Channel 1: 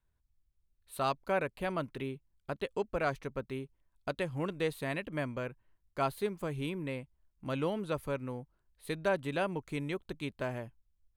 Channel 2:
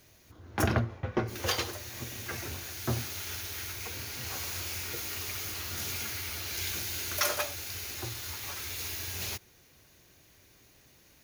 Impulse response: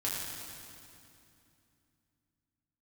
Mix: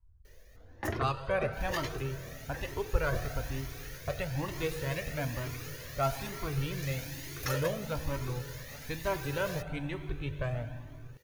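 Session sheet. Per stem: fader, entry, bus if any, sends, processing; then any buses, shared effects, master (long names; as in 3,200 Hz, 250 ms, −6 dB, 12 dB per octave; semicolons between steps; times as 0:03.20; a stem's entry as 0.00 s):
+1.5 dB, 0.00 s, send −9 dB, low-pass that shuts in the quiet parts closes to 1,000 Hz, open at −29 dBFS; low shelf with overshoot 130 Hz +13.5 dB, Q 1.5
+2.0 dB, 0.25 s, no send, hollow resonant body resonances 490/1,800 Hz, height 13 dB, ringing for 20 ms; automatic ducking −8 dB, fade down 0.95 s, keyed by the first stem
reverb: on, RT60 2.7 s, pre-delay 5 ms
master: flanger whose copies keep moving one way rising 1.1 Hz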